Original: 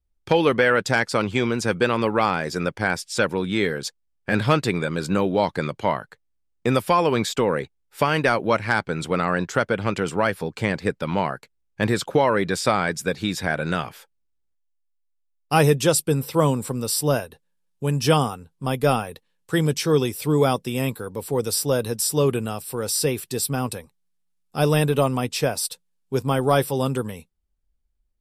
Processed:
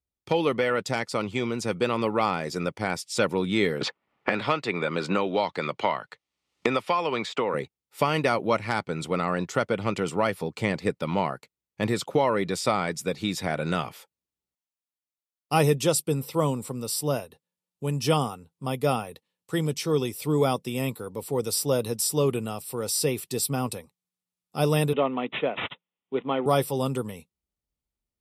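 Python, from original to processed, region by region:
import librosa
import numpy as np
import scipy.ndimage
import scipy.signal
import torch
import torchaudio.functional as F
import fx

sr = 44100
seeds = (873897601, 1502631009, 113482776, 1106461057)

y = fx.chain(x, sr, fx.bessel_lowpass(hz=1800.0, order=2),
    fx.tilt_eq(slope=4.0),
    fx.band_squash(depth_pct=100), at=(3.81, 7.54))
y = fx.chain(y, sr, fx.highpass(hz=200.0, slope=24),
    fx.resample_bad(factor=6, down='none', up='filtered'), at=(24.93, 26.46))
y = scipy.signal.sosfilt(scipy.signal.butter(2, 94.0, 'highpass', fs=sr, output='sos'), y)
y = fx.notch(y, sr, hz=1600.0, q=5.4)
y = fx.rider(y, sr, range_db=10, speed_s=2.0)
y = y * librosa.db_to_amplitude(-4.0)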